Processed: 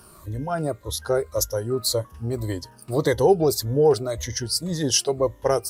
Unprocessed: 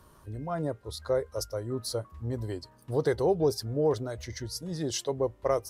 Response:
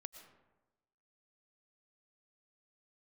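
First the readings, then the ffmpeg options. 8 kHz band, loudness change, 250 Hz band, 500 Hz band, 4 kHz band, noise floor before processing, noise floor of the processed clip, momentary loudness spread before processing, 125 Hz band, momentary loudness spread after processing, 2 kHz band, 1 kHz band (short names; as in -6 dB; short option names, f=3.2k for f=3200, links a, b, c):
+13.0 dB, +8.0 dB, +6.5 dB, +7.0 dB, +11.5 dB, -58 dBFS, -50 dBFS, 11 LU, +6.5 dB, 11 LU, +8.5 dB, +8.0 dB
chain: -af "afftfilt=real='re*pow(10,10/40*sin(2*PI*(1.1*log(max(b,1)*sr/1024/100)/log(2)-(-1.8)*(pts-256)/sr)))':imag='im*pow(10,10/40*sin(2*PI*(1.1*log(max(b,1)*sr/1024/100)/log(2)-(-1.8)*(pts-256)/sr)))':win_size=1024:overlap=0.75,highshelf=f=5.1k:g=9.5,volume=6dB"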